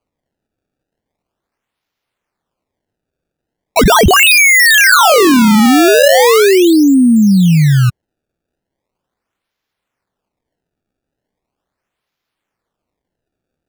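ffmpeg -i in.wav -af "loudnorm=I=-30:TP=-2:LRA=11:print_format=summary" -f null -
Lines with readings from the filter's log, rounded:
Input Integrated:     -7.2 LUFS
Input True Peak:      -2.0 dBTP
Input LRA:             7.5 LU
Input Threshold:     -17.4 LUFS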